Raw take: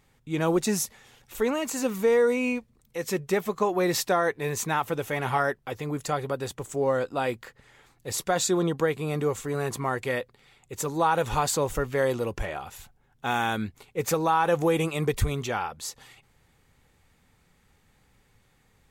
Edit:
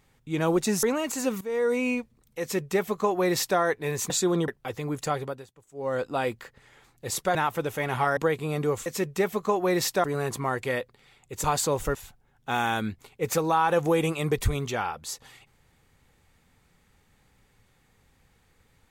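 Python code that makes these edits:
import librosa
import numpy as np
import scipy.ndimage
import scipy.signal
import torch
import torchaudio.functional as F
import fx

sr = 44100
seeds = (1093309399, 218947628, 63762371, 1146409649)

y = fx.edit(x, sr, fx.cut(start_s=0.83, length_s=0.58),
    fx.fade_in_from(start_s=1.99, length_s=0.38, floor_db=-18.5),
    fx.duplicate(start_s=2.99, length_s=1.18, to_s=9.44),
    fx.swap(start_s=4.68, length_s=0.82, other_s=8.37, other_length_s=0.38),
    fx.fade_down_up(start_s=6.2, length_s=0.84, db=-20.5, fade_s=0.29),
    fx.cut(start_s=10.84, length_s=0.5),
    fx.cut(start_s=11.85, length_s=0.86), tone=tone)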